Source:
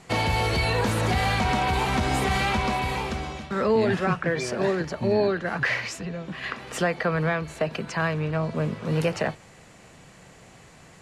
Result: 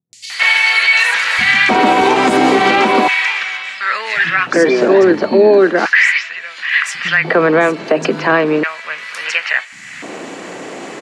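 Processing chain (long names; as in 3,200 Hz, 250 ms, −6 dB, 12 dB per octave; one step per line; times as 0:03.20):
upward compression, threshold −33 dBFS
band-pass filter 100–6,900 Hz
auto-filter high-pass square 0.36 Hz 300–1,900 Hz
three-band delay without the direct sound lows, highs, mids 130/300 ms, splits 150/4,600 Hz
boost into a limiter +15 dB
level −1 dB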